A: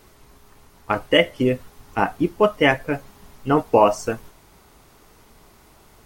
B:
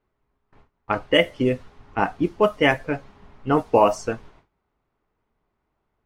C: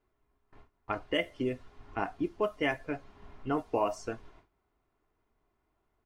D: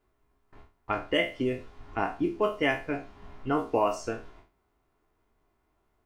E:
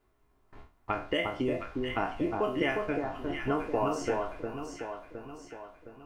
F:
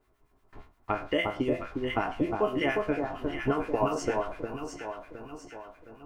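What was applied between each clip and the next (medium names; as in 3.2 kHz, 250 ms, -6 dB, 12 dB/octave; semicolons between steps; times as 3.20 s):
gate with hold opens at -38 dBFS; level-controlled noise filter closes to 2.2 kHz, open at -11.5 dBFS; trim -1.5 dB
comb 2.9 ms, depth 34%; compression 1.5:1, threshold -41 dBFS, peak gain reduction 11 dB; trim -3 dB
spectral sustain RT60 0.34 s; trim +3 dB
compression 2.5:1, threshold -30 dBFS, peak gain reduction 7.5 dB; echo whose repeats swap between lows and highs 357 ms, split 1.3 kHz, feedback 69%, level -3 dB; trim +1.5 dB
harmonic tremolo 8.6 Hz, crossover 1.2 kHz; trim +5 dB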